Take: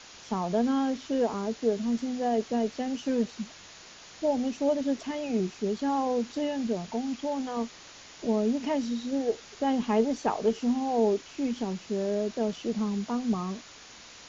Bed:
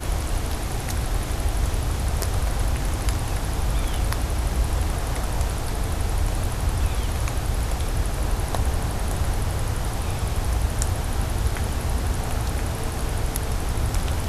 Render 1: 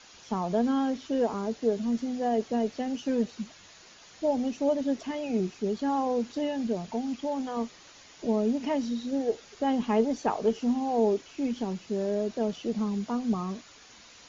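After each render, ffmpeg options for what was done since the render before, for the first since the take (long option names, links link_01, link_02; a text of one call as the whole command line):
ffmpeg -i in.wav -af "afftdn=noise_reduction=6:noise_floor=-49" out.wav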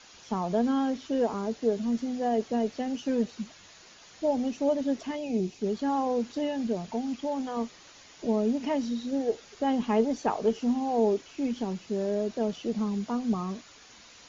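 ffmpeg -i in.wav -filter_complex "[0:a]asettb=1/sr,asplit=3[link_01][link_02][link_03];[link_01]atrim=end=5.164[link_04];[link_02]atrim=start=5.16:end=5.62,asetpts=PTS-STARTPTS,afade=type=in:duration=0.004:curve=qsin,afade=type=out:start_time=0.456:duration=0.004:curve=qsin,equalizer=frequency=1400:width_type=o:width=0.96:gain=-11[link_05];[link_03]atrim=start=5.616[link_06];[link_04][link_05]acrossfade=duration=0.004:curve1=hsin:curve2=qsin[link_07];[link_07][link_06]acrossfade=duration=0.004:curve1=qsin:curve2=hsin" out.wav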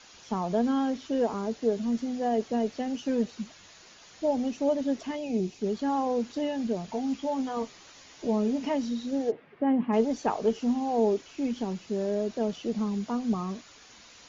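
ffmpeg -i in.wav -filter_complex "[0:a]asettb=1/sr,asplit=3[link_01][link_02][link_03];[link_01]atrim=end=6.874[link_04];[link_02]atrim=start=6.87:end=8.7,asetpts=PTS-STARTPTS,afade=type=in:duration=0.004:curve=qsin,afade=type=out:start_time=1.826:duration=0.004:curve=qsin,asplit=2[link_05][link_06];[link_06]adelay=15,volume=-7dB[link_07];[link_05][link_07]amix=inputs=2:normalize=0,atrim=end_sample=80703[link_08];[link_03]atrim=start=8.696[link_09];[link_04][link_08]acrossfade=duration=0.004:curve1=hsin:curve2=qsin[link_10];[link_10][link_09]acrossfade=duration=0.004:curve1=qsin:curve2=hsin,asplit=3[link_11][link_12][link_13];[link_11]afade=type=out:start_time=9.3:duration=0.02[link_14];[link_12]highpass=130,equalizer=frequency=150:width_type=q:width=4:gain=10,equalizer=frequency=280:width_type=q:width=4:gain=4,equalizer=frequency=430:width_type=q:width=4:gain=-3,equalizer=frequency=820:width_type=q:width=4:gain=-3,equalizer=frequency=1400:width_type=q:width=4:gain=-5,lowpass=frequency=2200:width=0.5412,lowpass=frequency=2200:width=1.3066,afade=type=in:start_time=9.3:duration=0.02,afade=type=out:start_time=9.92:duration=0.02[link_15];[link_13]afade=type=in:start_time=9.92:duration=0.02[link_16];[link_14][link_15][link_16]amix=inputs=3:normalize=0" out.wav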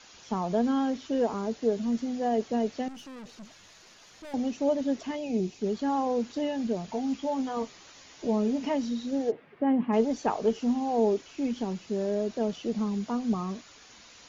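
ffmpeg -i in.wav -filter_complex "[0:a]asettb=1/sr,asplit=3[link_01][link_02][link_03];[link_01]atrim=end=2.884[link_04];[link_02]atrim=start=2.88:end=4.34,asetpts=PTS-STARTPTS,afade=type=in:duration=0.004:curve=qsin,afade=type=out:start_time=1.456:duration=0.004:curve=qsin,aeval=exprs='(tanh(126*val(0)+0.4)-tanh(0.4))/126':channel_layout=same[link_05];[link_03]atrim=start=4.336[link_06];[link_04][link_05]acrossfade=duration=0.004:curve1=hsin:curve2=qsin[link_07];[link_07][link_06]acrossfade=duration=0.004:curve1=qsin:curve2=hsin" out.wav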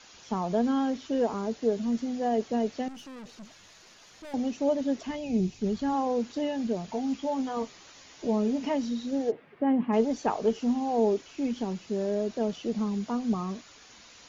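ffmpeg -i in.wav -filter_complex "[0:a]asplit=3[link_01][link_02][link_03];[link_01]afade=type=out:start_time=5.07:duration=0.02[link_04];[link_02]asubboost=boost=4:cutoff=170,afade=type=in:start_time=5.07:duration=0.02,afade=type=out:start_time=5.93:duration=0.02[link_05];[link_03]afade=type=in:start_time=5.93:duration=0.02[link_06];[link_04][link_05][link_06]amix=inputs=3:normalize=0" out.wav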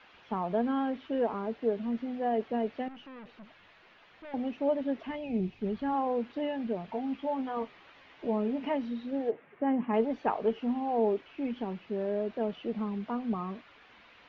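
ffmpeg -i in.wav -af "lowpass=frequency=2900:width=0.5412,lowpass=frequency=2900:width=1.3066,lowshelf=frequency=400:gain=-6" out.wav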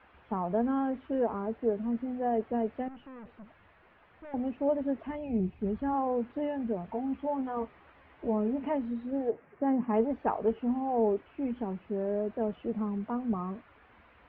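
ffmpeg -i in.wav -af "lowpass=1700,equalizer=frequency=67:width=1.2:gain=13" out.wav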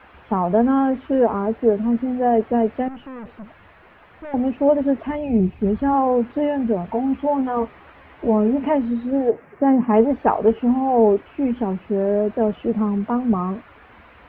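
ffmpeg -i in.wav -af "volume=12dB" out.wav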